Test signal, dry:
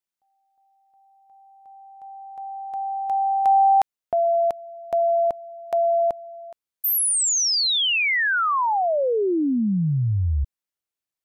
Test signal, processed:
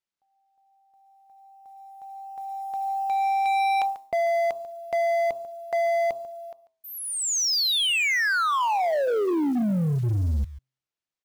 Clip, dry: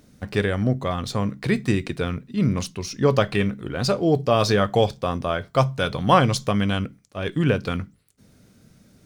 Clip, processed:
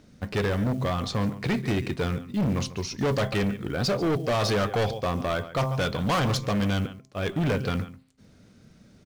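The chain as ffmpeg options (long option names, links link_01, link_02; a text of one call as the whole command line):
ffmpeg -i in.wav -af "lowpass=6100,bandreject=frequency=131:width_type=h:width=4,bandreject=frequency=262:width_type=h:width=4,bandreject=frequency=393:width_type=h:width=4,bandreject=frequency=524:width_type=h:width=4,bandreject=frequency=655:width_type=h:width=4,bandreject=frequency=786:width_type=h:width=4,bandreject=frequency=917:width_type=h:width=4,bandreject=frequency=1048:width_type=h:width=4,bandreject=frequency=1179:width_type=h:width=4,acrusher=bits=7:mode=log:mix=0:aa=0.000001,aecho=1:1:142:0.126,volume=21.5dB,asoftclip=hard,volume=-21.5dB" out.wav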